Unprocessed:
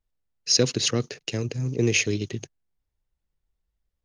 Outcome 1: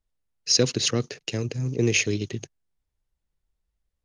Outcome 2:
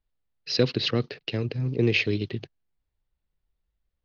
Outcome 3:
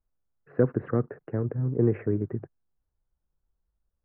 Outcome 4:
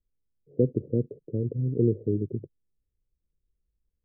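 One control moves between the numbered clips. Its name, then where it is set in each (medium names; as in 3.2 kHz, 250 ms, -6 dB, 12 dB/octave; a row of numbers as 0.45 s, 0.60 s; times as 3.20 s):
steep low-pass, frequency: 12 kHz, 4.6 kHz, 1.6 kHz, 520 Hz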